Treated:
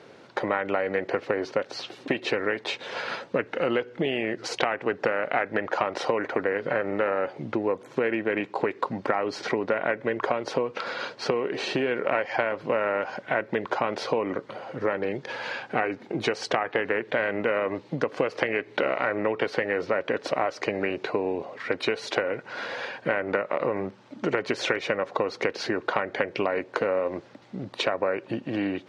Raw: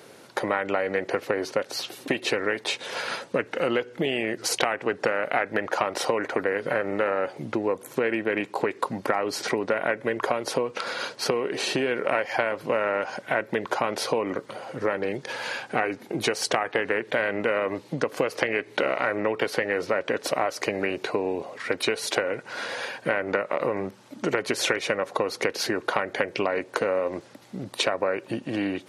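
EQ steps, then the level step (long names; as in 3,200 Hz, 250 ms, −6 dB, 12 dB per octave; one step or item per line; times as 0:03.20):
high-frequency loss of the air 140 metres
0.0 dB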